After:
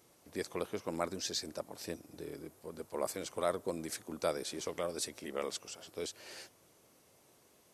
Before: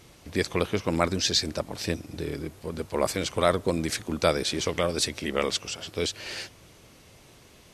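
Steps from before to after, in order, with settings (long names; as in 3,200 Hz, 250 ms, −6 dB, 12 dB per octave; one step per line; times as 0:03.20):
high-pass filter 760 Hz 6 dB per octave
parametric band 2,900 Hz −13.5 dB 2.8 octaves
level −2.5 dB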